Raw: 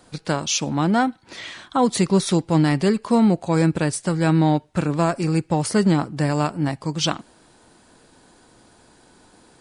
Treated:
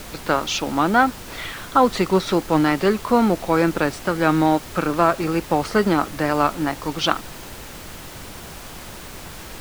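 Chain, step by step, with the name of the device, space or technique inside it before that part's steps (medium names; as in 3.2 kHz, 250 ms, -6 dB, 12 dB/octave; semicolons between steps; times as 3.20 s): horn gramophone (band-pass 290–3600 Hz; peaking EQ 1.3 kHz +7 dB 0.35 oct; wow and flutter; pink noise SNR 15 dB); trim +3.5 dB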